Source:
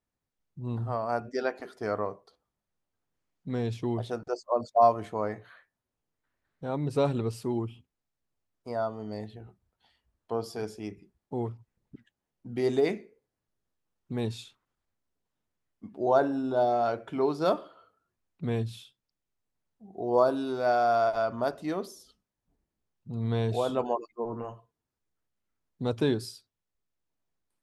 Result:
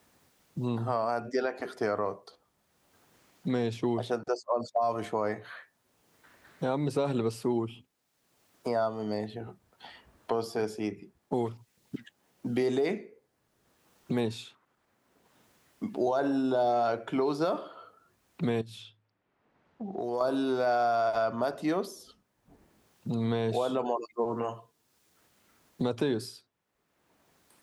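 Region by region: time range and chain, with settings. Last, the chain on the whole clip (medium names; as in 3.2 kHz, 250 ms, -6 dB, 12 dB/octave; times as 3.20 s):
18.61–20.21 s: level-controlled noise filter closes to 2.1 kHz, open at -31.5 dBFS + de-hum 53.47 Hz, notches 3 + compression 2:1, threshold -49 dBFS
whole clip: high-pass 190 Hz 6 dB/octave; peak limiter -21.5 dBFS; three bands compressed up and down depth 70%; trim +3.5 dB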